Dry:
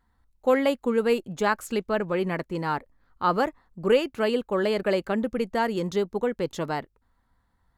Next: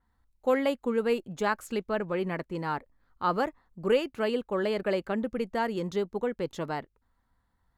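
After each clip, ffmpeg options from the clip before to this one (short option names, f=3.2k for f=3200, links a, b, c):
-af "adynamicequalizer=threshold=0.00501:dfrequency=4100:dqfactor=0.7:tfrequency=4100:tqfactor=0.7:attack=5:release=100:ratio=0.375:range=2:mode=cutabove:tftype=highshelf,volume=-4dB"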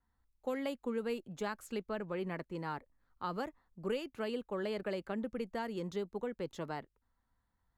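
-filter_complex "[0:a]acrossover=split=270|3000[a][b][c];[b]acompressor=threshold=-28dB:ratio=6[d];[a][d][c]amix=inputs=3:normalize=0,volume=-7dB"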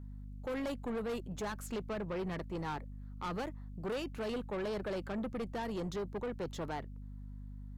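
-af "aeval=exprs='val(0)+0.00316*(sin(2*PI*50*n/s)+sin(2*PI*2*50*n/s)/2+sin(2*PI*3*50*n/s)/3+sin(2*PI*4*50*n/s)/4+sin(2*PI*5*50*n/s)/5)':c=same,asoftclip=type=tanh:threshold=-39dB,volume=5.5dB"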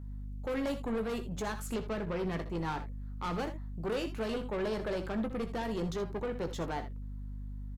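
-af "aecho=1:1:18|64|80:0.316|0.224|0.2,volume=2.5dB"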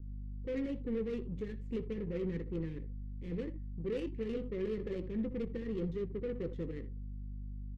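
-af "asuperstop=centerf=970:order=20:qfactor=0.79,adynamicsmooth=sensitivity=5.5:basefreq=770,volume=-1.5dB"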